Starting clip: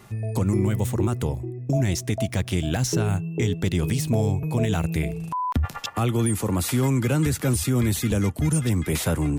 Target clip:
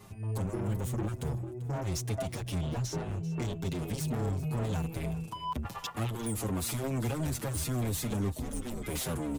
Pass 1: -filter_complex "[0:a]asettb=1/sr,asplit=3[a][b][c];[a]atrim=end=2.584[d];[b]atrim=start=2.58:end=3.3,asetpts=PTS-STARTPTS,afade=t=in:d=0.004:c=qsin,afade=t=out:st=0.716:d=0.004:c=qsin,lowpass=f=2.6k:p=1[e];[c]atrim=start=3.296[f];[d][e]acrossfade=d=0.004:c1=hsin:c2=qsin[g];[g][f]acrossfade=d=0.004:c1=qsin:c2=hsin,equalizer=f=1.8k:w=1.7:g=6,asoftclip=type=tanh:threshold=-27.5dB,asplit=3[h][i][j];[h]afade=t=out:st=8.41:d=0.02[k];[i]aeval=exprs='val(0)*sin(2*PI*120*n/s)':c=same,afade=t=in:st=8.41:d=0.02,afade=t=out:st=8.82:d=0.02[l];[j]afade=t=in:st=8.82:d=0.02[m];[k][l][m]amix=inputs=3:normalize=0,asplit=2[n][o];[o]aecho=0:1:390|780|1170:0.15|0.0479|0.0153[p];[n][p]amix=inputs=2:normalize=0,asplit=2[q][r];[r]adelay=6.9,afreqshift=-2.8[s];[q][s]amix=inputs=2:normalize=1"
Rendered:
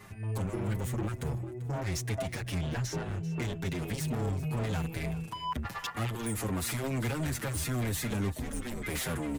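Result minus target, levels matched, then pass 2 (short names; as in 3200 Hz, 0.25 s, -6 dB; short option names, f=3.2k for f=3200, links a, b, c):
2000 Hz band +6.0 dB
-filter_complex "[0:a]asettb=1/sr,asplit=3[a][b][c];[a]atrim=end=2.584[d];[b]atrim=start=2.58:end=3.3,asetpts=PTS-STARTPTS,afade=t=in:d=0.004:c=qsin,afade=t=out:st=0.716:d=0.004:c=qsin,lowpass=f=2.6k:p=1[e];[c]atrim=start=3.296[f];[d][e]acrossfade=d=0.004:c1=hsin:c2=qsin[g];[g][f]acrossfade=d=0.004:c1=qsin:c2=hsin,equalizer=f=1.8k:w=1.7:g=-5,asoftclip=type=tanh:threshold=-27.5dB,asplit=3[h][i][j];[h]afade=t=out:st=8.41:d=0.02[k];[i]aeval=exprs='val(0)*sin(2*PI*120*n/s)':c=same,afade=t=in:st=8.41:d=0.02,afade=t=out:st=8.82:d=0.02[l];[j]afade=t=in:st=8.82:d=0.02[m];[k][l][m]amix=inputs=3:normalize=0,asplit=2[n][o];[o]aecho=0:1:390|780|1170:0.15|0.0479|0.0153[p];[n][p]amix=inputs=2:normalize=0,asplit=2[q][r];[r]adelay=6.9,afreqshift=-2.8[s];[q][s]amix=inputs=2:normalize=1"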